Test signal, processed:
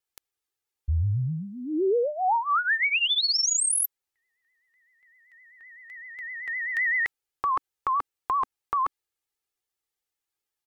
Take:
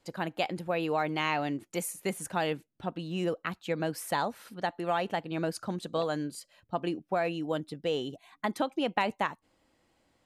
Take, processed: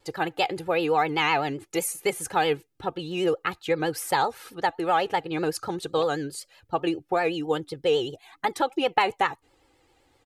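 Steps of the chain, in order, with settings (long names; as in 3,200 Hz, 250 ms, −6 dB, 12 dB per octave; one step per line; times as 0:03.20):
dynamic equaliser 270 Hz, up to −6 dB, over −48 dBFS, Q 3.6
comb filter 2.4 ms, depth 74%
pitch vibrato 7.8 Hz 96 cents
level +5 dB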